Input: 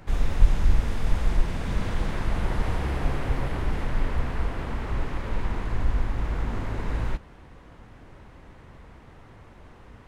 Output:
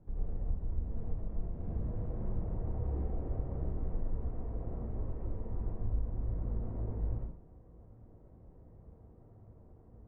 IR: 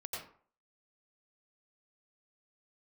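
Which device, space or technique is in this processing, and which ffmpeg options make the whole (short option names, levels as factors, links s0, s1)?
television next door: -filter_complex "[0:a]acompressor=threshold=0.0891:ratio=4,lowpass=450[s0];[1:a]atrim=start_sample=2205[s1];[s0][s1]afir=irnorm=-1:irlink=0,volume=0.501"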